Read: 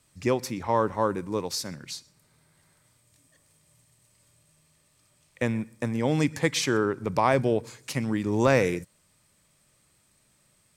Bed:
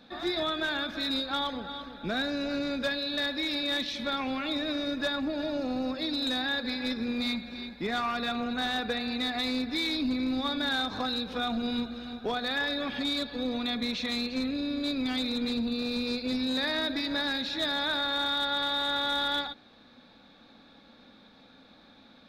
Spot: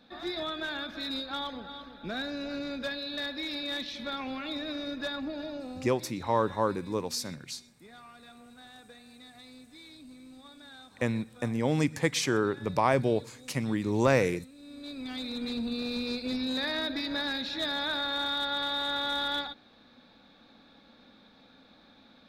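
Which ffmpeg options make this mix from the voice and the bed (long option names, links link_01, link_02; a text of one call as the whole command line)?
ffmpeg -i stem1.wav -i stem2.wav -filter_complex "[0:a]adelay=5600,volume=-2.5dB[link_01];[1:a]volume=14.5dB,afade=type=out:start_time=5.3:duration=0.84:silence=0.149624,afade=type=in:start_time=14.56:duration=1.18:silence=0.112202[link_02];[link_01][link_02]amix=inputs=2:normalize=0" out.wav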